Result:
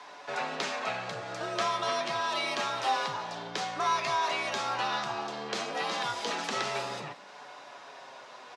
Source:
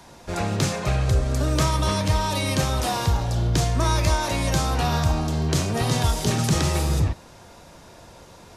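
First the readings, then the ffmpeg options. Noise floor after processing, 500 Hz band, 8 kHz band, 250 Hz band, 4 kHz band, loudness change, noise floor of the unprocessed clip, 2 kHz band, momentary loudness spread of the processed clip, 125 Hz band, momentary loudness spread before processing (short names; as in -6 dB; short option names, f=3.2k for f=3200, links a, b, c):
-49 dBFS, -7.0 dB, -12.5 dB, -17.0 dB, -5.0 dB, -8.5 dB, -47 dBFS, -2.0 dB, 18 LU, -28.0 dB, 3 LU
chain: -filter_complex "[0:a]asplit=2[a][b];[b]acompressor=threshold=-34dB:ratio=6,volume=2.5dB[c];[a][c]amix=inputs=2:normalize=0,afreqshift=55,flanger=delay=6.9:depth=1.9:regen=52:speed=0.27:shape=sinusoidal,highpass=680,lowpass=3.8k,asplit=6[d][e][f][g][h][i];[e]adelay=180,afreqshift=49,volume=-21dB[j];[f]adelay=360,afreqshift=98,volume=-24.9dB[k];[g]adelay=540,afreqshift=147,volume=-28.8dB[l];[h]adelay=720,afreqshift=196,volume=-32.6dB[m];[i]adelay=900,afreqshift=245,volume=-36.5dB[n];[d][j][k][l][m][n]amix=inputs=6:normalize=0"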